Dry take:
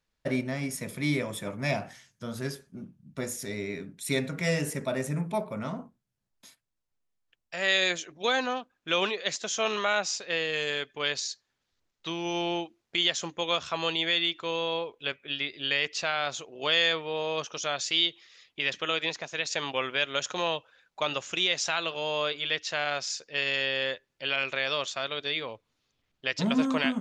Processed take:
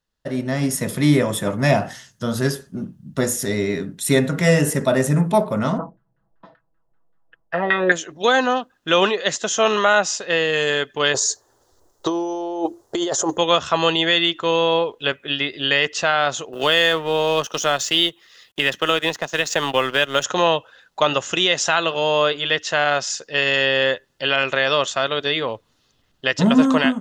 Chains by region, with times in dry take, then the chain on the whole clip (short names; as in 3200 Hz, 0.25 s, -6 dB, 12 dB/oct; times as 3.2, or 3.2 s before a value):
5.78–7.92 comb 6.1 ms, depth 83% + LFO low-pass saw down 5.2 Hz 540–1700 Hz + polynomial smoothing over 15 samples
11.14–13.38 EQ curve 120 Hz 0 dB, 190 Hz -11 dB, 360 Hz +8 dB, 970 Hz +5 dB, 2600 Hz -16 dB, 6800 Hz +3 dB + negative-ratio compressor -35 dBFS
16.53–20.24 G.711 law mismatch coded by A + three-band squash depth 40%
whole clip: dynamic EQ 4500 Hz, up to -8 dB, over -45 dBFS, Q 1.5; notch 2300 Hz, Q 5.1; AGC gain up to 13.5 dB